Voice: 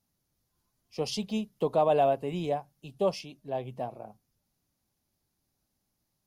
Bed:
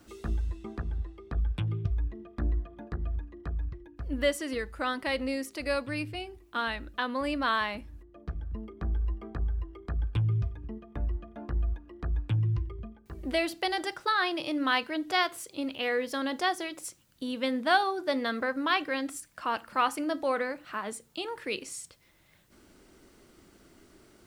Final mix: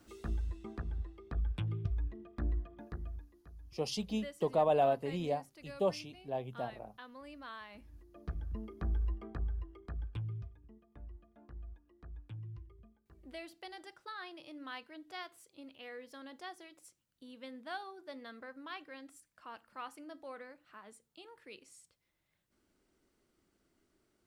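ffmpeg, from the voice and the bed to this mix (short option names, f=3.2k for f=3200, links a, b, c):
-filter_complex "[0:a]adelay=2800,volume=-4.5dB[a];[1:a]volume=11dB,afade=t=out:st=2.75:d=0.65:silence=0.188365,afade=t=in:st=7.69:d=0.5:silence=0.149624,afade=t=out:st=8.96:d=1.64:silence=0.177828[b];[a][b]amix=inputs=2:normalize=0"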